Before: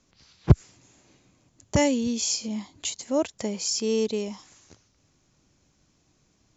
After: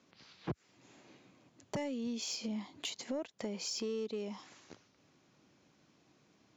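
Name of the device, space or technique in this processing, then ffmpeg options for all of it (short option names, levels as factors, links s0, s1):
AM radio: -af "highpass=180,lowpass=3900,acompressor=threshold=0.0141:ratio=5,asoftclip=type=tanh:threshold=0.0355,volume=1.19"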